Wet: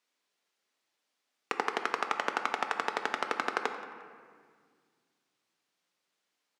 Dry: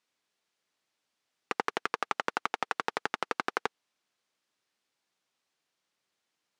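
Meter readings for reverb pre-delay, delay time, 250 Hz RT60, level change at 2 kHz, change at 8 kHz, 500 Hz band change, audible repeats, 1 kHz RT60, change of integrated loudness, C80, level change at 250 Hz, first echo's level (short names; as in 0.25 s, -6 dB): 4 ms, 0.176 s, 2.8 s, +1.0 dB, +0.5 dB, +1.0 dB, 1, 1.8 s, +0.5 dB, 8.5 dB, 0.0 dB, -18.5 dB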